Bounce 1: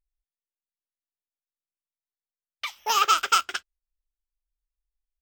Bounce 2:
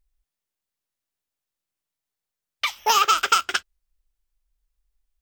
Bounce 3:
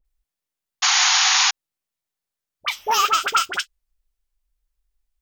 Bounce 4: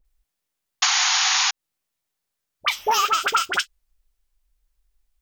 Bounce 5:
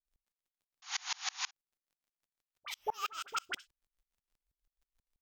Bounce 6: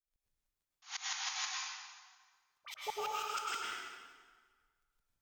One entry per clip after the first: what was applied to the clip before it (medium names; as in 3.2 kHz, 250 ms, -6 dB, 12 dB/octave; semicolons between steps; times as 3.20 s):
compression, threshold -23 dBFS, peak gain reduction 8 dB; bass shelf 170 Hz +4.5 dB; trim +8 dB
phase dispersion highs, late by 49 ms, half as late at 1.2 kHz; painted sound noise, 0.82–1.51 s, 720–7000 Hz -17 dBFS
compression 6:1, threshold -22 dBFS, peak gain reduction 8.5 dB; trim +5 dB
peak limiter -13 dBFS, peak gain reduction 7 dB; crackle 56 per s -50 dBFS; sawtooth tremolo in dB swelling 6.2 Hz, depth 33 dB; trim -8.5 dB
plate-style reverb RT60 1.6 s, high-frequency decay 0.8×, pre-delay 90 ms, DRR -5 dB; trim -5.5 dB